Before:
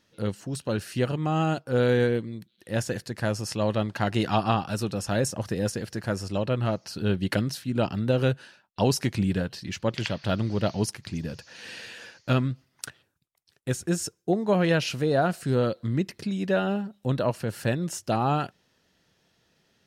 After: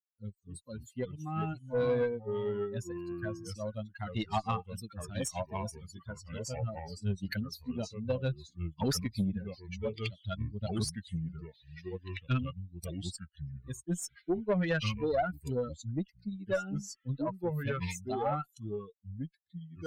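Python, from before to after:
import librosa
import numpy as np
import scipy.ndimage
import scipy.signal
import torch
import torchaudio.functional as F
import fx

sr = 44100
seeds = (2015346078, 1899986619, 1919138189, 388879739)

y = fx.bin_expand(x, sr, power=3.0)
y = fx.echo_pitch(y, sr, ms=206, semitones=-3, count=2, db_per_echo=-6.0)
y = fx.tube_stage(y, sr, drive_db=21.0, bias=0.25)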